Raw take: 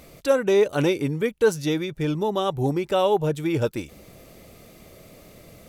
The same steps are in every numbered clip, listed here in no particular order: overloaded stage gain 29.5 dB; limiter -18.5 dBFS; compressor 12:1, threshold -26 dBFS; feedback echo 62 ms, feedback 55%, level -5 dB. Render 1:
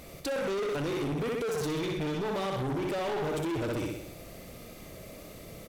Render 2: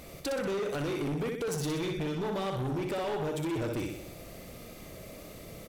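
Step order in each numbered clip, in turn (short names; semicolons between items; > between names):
feedback echo > limiter > overloaded stage > compressor; limiter > compressor > feedback echo > overloaded stage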